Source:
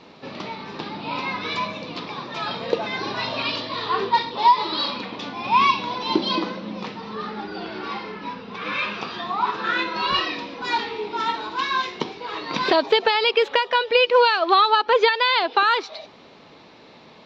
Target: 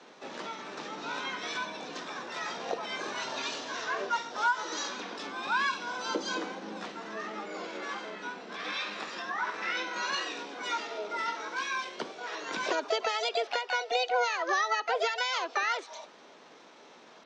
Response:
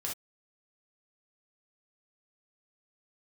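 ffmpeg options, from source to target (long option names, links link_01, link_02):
-filter_complex "[0:a]highpass=110,acrossover=split=200 4600:gain=0.158 1 0.112[link_01][link_02][link_03];[link_01][link_02][link_03]amix=inputs=3:normalize=0,acrossover=split=160[link_04][link_05];[link_05]acompressor=threshold=-32dB:ratio=1.5[link_06];[link_04][link_06]amix=inputs=2:normalize=0,asplit=2[link_07][link_08];[link_08]asetrate=66075,aresample=44100,atempo=0.66742,volume=0dB[link_09];[link_07][link_09]amix=inputs=2:normalize=0,asplit=2[link_10][link_11];[1:a]atrim=start_sample=2205[link_12];[link_11][link_12]afir=irnorm=-1:irlink=0,volume=-21dB[link_13];[link_10][link_13]amix=inputs=2:normalize=0,volume=-8.5dB"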